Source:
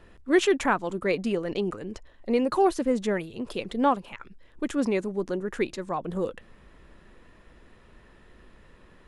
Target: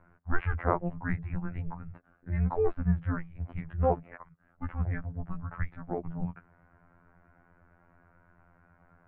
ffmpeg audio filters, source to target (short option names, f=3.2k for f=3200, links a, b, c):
-af "afftfilt=real='hypot(re,im)*cos(PI*b)':imag='0':win_size=2048:overlap=0.75,highpass=f=180:t=q:w=0.5412,highpass=f=180:t=q:w=1.307,lowpass=f=2.2k:t=q:w=0.5176,lowpass=f=2.2k:t=q:w=0.7071,lowpass=f=2.2k:t=q:w=1.932,afreqshift=-340"